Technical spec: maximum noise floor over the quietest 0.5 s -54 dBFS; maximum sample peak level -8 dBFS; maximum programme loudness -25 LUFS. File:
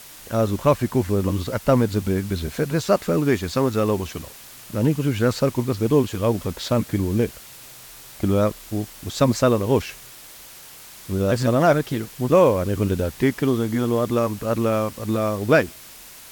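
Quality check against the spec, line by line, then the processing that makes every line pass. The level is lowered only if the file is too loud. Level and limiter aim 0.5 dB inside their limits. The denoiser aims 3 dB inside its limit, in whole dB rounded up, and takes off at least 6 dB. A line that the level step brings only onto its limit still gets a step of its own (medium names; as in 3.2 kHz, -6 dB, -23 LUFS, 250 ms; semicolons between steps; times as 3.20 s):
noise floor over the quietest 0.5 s -43 dBFS: fail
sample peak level -5.5 dBFS: fail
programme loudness -21.5 LUFS: fail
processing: noise reduction 10 dB, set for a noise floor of -43 dBFS; trim -4 dB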